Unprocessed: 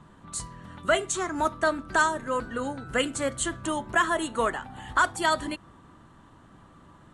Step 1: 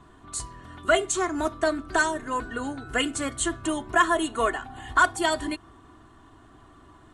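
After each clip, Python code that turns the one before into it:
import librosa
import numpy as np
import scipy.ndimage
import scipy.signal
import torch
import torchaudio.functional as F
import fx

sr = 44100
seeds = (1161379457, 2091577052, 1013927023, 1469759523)

y = x + 0.67 * np.pad(x, (int(2.8 * sr / 1000.0), 0))[:len(x)]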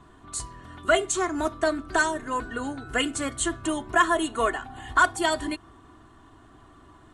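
y = x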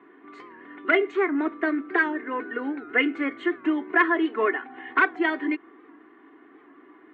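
y = np.minimum(x, 2.0 * 10.0 ** (-13.5 / 20.0) - x)
y = fx.cabinet(y, sr, low_hz=280.0, low_slope=24, high_hz=2300.0, hz=(290.0, 420.0, 630.0, 940.0, 1300.0, 2100.0), db=(5, 5, -10, -6, -4, 9))
y = fx.record_warp(y, sr, rpm=78.0, depth_cents=100.0)
y = y * librosa.db_to_amplitude(2.5)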